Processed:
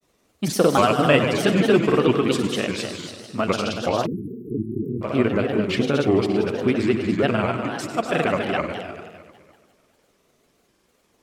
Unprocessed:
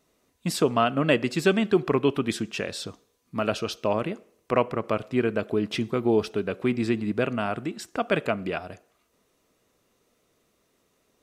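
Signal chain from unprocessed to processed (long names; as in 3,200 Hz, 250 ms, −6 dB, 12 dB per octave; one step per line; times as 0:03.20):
echo machine with several playback heads 84 ms, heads all three, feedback 52%, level −10 dB
time-frequency box erased 0:04.07–0:05.04, 430–11,000 Hz
granular cloud, spray 36 ms, pitch spread up and down by 3 semitones
level +4.5 dB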